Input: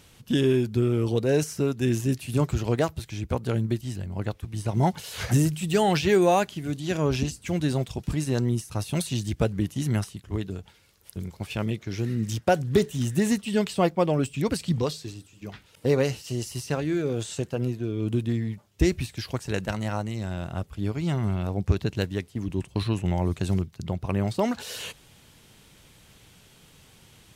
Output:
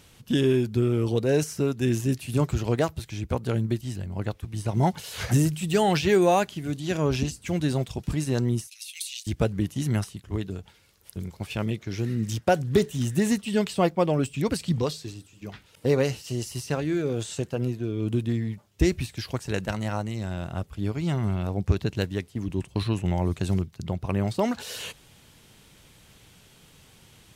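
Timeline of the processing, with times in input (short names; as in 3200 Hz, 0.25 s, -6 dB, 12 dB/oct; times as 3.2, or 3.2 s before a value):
8.67–9.27 steep high-pass 2200 Hz 48 dB/oct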